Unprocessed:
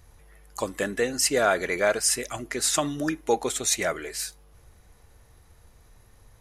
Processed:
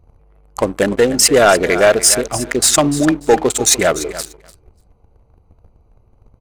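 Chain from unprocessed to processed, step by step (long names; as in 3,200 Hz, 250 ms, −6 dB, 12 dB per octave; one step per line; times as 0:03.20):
adaptive Wiener filter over 25 samples
repeating echo 294 ms, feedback 23%, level −15.5 dB
leveller curve on the samples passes 2
level +7 dB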